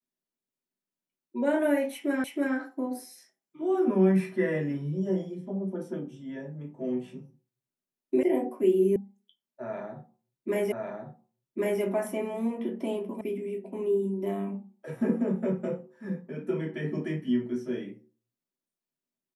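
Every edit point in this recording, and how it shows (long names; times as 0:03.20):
0:02.24: the same again, the last 0.32 s
0:08.23: cut off before it has died away
0:08.96: cut off before it has died away
0:10.72: the same again, the last 1.1 s
0:13.21: cut off before it has died away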